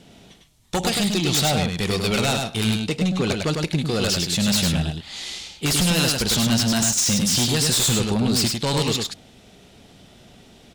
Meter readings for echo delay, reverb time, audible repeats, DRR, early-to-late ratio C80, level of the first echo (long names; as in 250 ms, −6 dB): 102 ms, no reverb audible, 1, no reverb audible, no reverb audible, −4.0 dB